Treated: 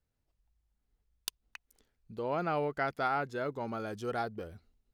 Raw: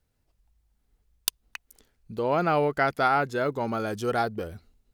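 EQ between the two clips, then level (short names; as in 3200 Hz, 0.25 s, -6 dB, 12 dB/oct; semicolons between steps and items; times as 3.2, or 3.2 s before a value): high shelf 8300 Hz -6.5 dB; -8.5 dB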